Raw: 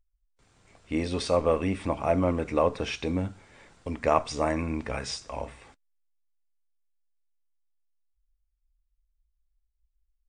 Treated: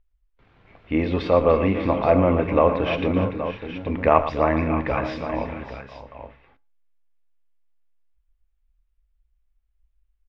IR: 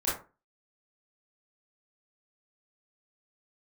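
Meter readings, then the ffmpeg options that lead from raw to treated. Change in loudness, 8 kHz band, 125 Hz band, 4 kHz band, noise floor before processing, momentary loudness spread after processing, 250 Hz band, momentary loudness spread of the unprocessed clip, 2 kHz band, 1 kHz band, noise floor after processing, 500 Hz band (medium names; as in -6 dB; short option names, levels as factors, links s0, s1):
+6.5 dB, under -15 dB, +7.0 dB, -0.5 dB, -77 dBFS, 14 LU, +7.0 dB, 12 LU, +7.0 dB, +7.0 dB, -69 dBFS, +7.5 dB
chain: -filter_complex "[0:a]lowpass=f=3100:w=0.5412,lowpass=f=3100:w=1.3066,aecho=1:1:114|292|593|622|824:0.251|0.2|0.178|0.158|0.282,asplit=2[s0][s1];[1:a]atrim=start_sample=2205[s2];[s1][s2]afir=irnorm=-1:irlink=0,volume=0.0335[s3];[s0][s3]amix=inputs=2:normalize=0,volume=2"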